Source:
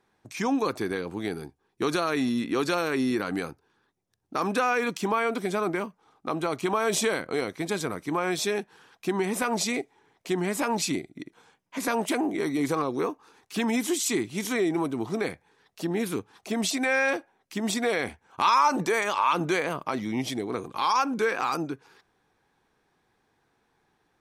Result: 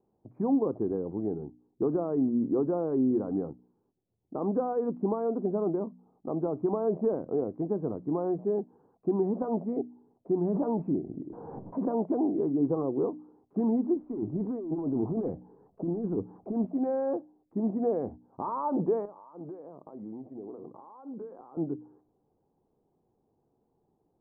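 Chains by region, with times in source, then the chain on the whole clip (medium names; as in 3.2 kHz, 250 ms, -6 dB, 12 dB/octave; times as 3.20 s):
10.44–11.88 s: distance through air 140 m + swell ahead of each attack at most 26 dB/s
13.96–16.56 s: companding laws mixed up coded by mu + hard clipper -22 dBFS + compressor with a negative ratio -29 dBFS, ratio -0.5
19.05–21.57 s: high-pass 320 Hz 6 dB/octave + compression 12:1, threshold -36 dBFS
whole clip: Bessel low-pass 500 Hz, order 6; bass shelf 100 Hz -6 dB; de-hum 60.79 Hz, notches 5; trim +2.5 dB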